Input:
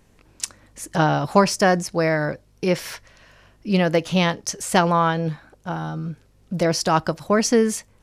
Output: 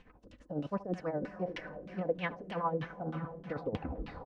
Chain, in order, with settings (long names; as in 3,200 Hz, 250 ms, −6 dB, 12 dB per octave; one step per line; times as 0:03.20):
turntable brake at the end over 1.48 s
repeating echo 145 ms, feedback 39%, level −22 dB
gain on a spectral selection 0:00.41–0:01.44, 650–2,600 Hz −10 dB
reversed playback
downward compressor 6 to 1, threshold −32 dBFS, peak gain reduction 19 dB
reversed playback
phase-vocoder stretch with locked phases 0.53×
amplitude tremolo 12 Hz, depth 69%
feedback delay with all-pass diffusion 541 ms, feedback 54%, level −11.5 dB
auto-filter low-pass saw down 3.2 Hz 300–3,200 Hz
comb filter 4 ms, depth 38%